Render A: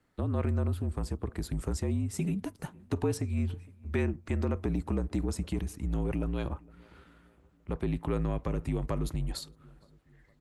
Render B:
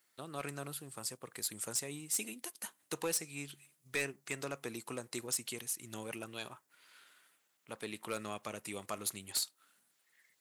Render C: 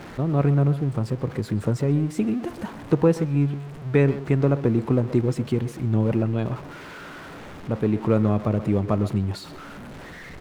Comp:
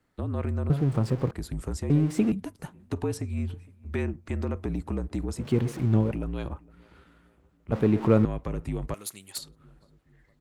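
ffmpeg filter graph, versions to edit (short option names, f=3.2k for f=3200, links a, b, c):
-filter_complex "[2:a]asplit=4[a][b][c][d];[0:a]asplit=6[e][f][g][h][i][j];[e]atrim=end=0.702[k];[a]atrim=start=0.698:end=1.312[l];[f]atrim=start=1.308:end=1.902[m];[b]atrim=start=1.898:end=2.322[n];[g]atrim=start=2.318:end=5.56[o];[c]atrim=start=5.32:end=6.2[p];[h]atrim=start=5.96:end=7.722[q];[d]atrim=start=7.718:end=8.252[r];[i]atrim=start=8.248:end=8.942[s];[1:a]atrim=start=8.938:end=9.382[t];[j]atrim=start=9.378[u];[k][l]acrossfade=d=0.004:c1=hsin:c2=hsin[v];[v][m]acrossfade=d=0.004:c1=hsin:c2=hsin[w];[w][n]acrossfade=d=0.004:c1=hsin:c2=hsin[x];[x][o]acrossfade=d=0.004:c1=hsin:c2=hsin[y];[y][p]acrossfade=d=0.24:c1=tri:c2=tri[z];[z][q]acrossfade=d=0.24:c1=tri:c2=tri[aa];[aa][r]acrossfade=d=0.004:c1=hsin:c2=hsin[ab];[ab][s]acrossfade=d=0.004:c1=hsin:c2=hsin[ac];[ac][t]acrossfade=d=0.004:c1=hsin:c2=hsin[ad];[ad][u]acrossfade=d=0.004:c1=hsin:c2=hsin"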